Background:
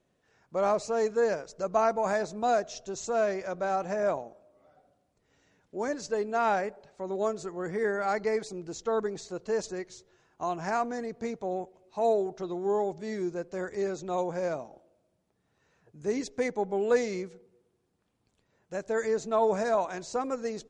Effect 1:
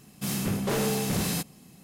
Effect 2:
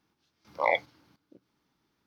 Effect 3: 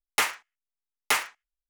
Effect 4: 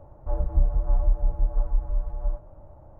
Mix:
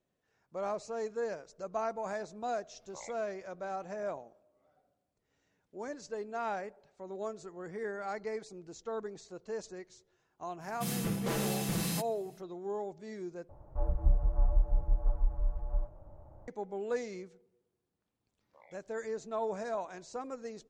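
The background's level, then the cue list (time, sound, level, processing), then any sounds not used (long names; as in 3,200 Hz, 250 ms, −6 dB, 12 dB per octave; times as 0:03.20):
background −9.5 dB
0:02.35: mix in 2 −15.5 dB + downward compressor, threshold −29 dBFS
0:10.59: mix in 1 −7 dB, fades 0.05 s + comb filter 6 ms, depth 53%
0:13.49: overwrite with 4 −5.5 dB
0:17.96: mix in 2 −16.5 dB + output level in coarse steps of 22 dB
not used: 3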